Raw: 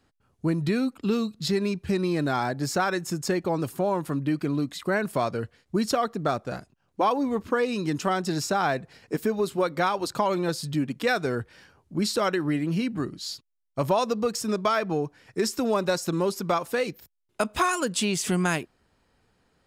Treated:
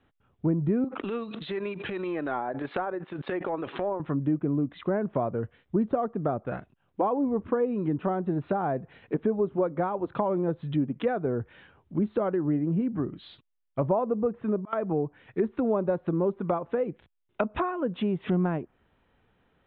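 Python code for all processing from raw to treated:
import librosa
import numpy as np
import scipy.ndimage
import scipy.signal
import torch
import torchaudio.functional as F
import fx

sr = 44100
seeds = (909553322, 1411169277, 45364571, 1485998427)

y = fx.chain(x, sr, fx.highpass(hz=370.0, slope=12),
    fx.transient(attack_db=-12, sustain_db=-7),
    fx.pre_swell(db_per_s=30.0), at=(0.84, 4.0))
y = fx.chain(y, sr, fx.lowpass(hz=2400.0, slope=12),
    fx.auto_swell(attack_ms=485.0), at=(13.92, 14.73))
y = scipy.signal.sosfilt(scipy.signal.butter(16, 3700.0, 'lowpass', fs=sr, output='sos'), y)
y = fx.env_lowpass_down(y, sr, base_hz=750.0, full_db=-23.5)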